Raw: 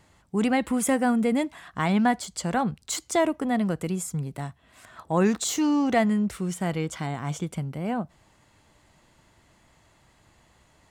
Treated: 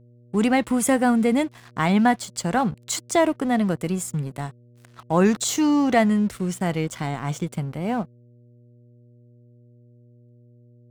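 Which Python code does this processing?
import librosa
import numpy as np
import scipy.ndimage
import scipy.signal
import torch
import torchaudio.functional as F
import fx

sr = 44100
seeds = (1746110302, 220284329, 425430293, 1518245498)

y = np.sign(x) * np.maximum(np.abs(x) - 10.0 ** (-46.5 / 20.0), 0.0)
y = fx.dmg_buzz(y, sr, base_hz=120.0, harmonics=5, level_db=-56.0, tilt_db=-8, odd_only=False)
y = F.gain(torch.from_numpy(y), 4.0).numpy()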